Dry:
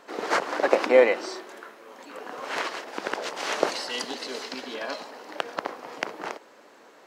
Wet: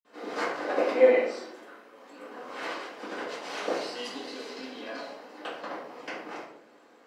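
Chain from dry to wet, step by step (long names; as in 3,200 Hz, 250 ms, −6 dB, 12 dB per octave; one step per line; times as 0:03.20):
Bessel high-pass filter 190 Hz, order 2
convolution reverb RT60 0.65 s, pre-delay 46 ms, DRR −60 dB
level +6.5 dB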